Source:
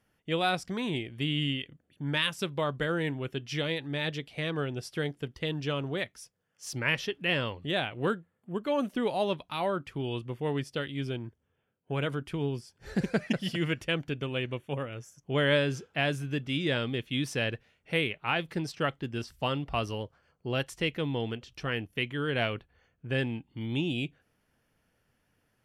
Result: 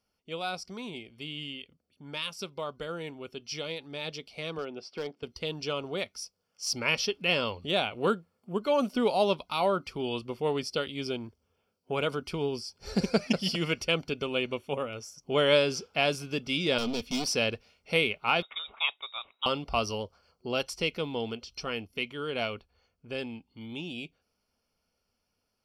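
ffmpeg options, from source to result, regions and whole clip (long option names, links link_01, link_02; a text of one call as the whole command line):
ffmpeg -i in.wav -filter_complex "[0:a]asettb=1/sr,asplit=3[link_01][link_02][link_03];[link_01]atrim=end=4.584[link_04];[link_02]atrim=start=4.58:end=5.23,asetpts=PTS-STARTPTS,afade=type=in:duration=0.004:curve=qsin,afade=type=out:start_time=0.646:duration=0.004:curve=qsin,highpass=190,lowpass=2900,volume=24dB,asoftclip=hard,volume=-24dB[link_05];[link_03]atrim=start=5.226[link_06];[link_04][link_05]acrossfade=duration=0.004:curve1=hsin:curve2=qsin[link_07];[link_07][link_06]acrossfade=duration=0.004:curve1=qsin:curve2=hsin,asettb=1/sr,asplit=3[link_08][link_09][link_10];[link_08]atrim=end=16.784[link_11];[link_09]atrim=start=16.78:end=17.32,asetpts=PTS-STARTPTS,afade=type=in:duration=0.004:curve=qsin,afade=type=out:start_time=0.536:duration=0.004:curve=qsin,lowshelf=frequency=230:gain=6.5,volume=31dB,asoftclip=hard,volume=-31dB,aecho=1:1:4.1:0.47,atrim=end_sample=23814[link_12];[link_10]atrim=start=17.316[link_13];[link_11][link_12]acrossfade=duration=0.004:curve1=hsin:curve2=qsin[link_14];[link_14][link_13]acrossfade=duration=0.004:curve1=qsin:curve2=hsin,asettb=1/sr,asplit=3[link_15][link_16][link_17];[link_15]atrim=end=18.424[link_18];[link_16]atrim=start=18.42:end=19.46,asetpts=PTS-STARTPTS,afade=type=in:duration=0.004:curve=qsin,afade=type=out:start_time=1.036:duration=0.004:curve=qsin,highpass=frequency=790:poles=1,lowpass=frequency=3300:width_type=q:width=0.5098,lowpass=frequency=3300:width_type=q:width=0.6013,lowpass=frequency=3300:width_type=q:width=0.9,lowpass=frequency=3300:width_type=q:width=2.563,afreqshift=-3900[link_19];[link_17]atrim=start=19.456[link_20];[link_18][link_19]acrossfade=duration=0.004:curve1=hsin:curve2=qsin[link_21];[link_21][link_20]acrossfade=duration=0.004:curve1=qsin:curve2=hsin,equalizer=frequency=130:width=2.9:gain=-14,dynaudnorm=framelen=850:gausssize=13:maxgain=11dB,superequalizer=6b=0.562:11b=0.316:14b=3.16,volume=-6dB" out.wav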